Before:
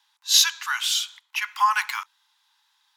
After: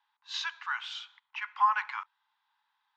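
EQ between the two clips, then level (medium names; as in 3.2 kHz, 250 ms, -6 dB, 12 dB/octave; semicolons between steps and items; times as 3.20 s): tape spacing loss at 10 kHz 45 dB; 0.0 dB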